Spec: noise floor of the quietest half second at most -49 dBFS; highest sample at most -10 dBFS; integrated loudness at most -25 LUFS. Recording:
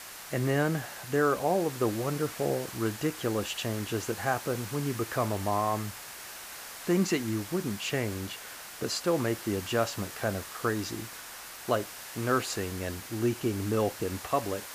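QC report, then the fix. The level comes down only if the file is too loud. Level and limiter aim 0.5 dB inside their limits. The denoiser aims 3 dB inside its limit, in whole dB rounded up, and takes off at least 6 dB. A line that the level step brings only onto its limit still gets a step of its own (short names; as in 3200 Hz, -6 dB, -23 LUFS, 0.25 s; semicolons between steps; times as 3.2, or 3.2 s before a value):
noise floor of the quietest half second -44 dBFS: fail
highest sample -13.0 dBFS: OK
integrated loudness -31.0 LUFS: OK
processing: denoiser 8 dB, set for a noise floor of -44 dBFS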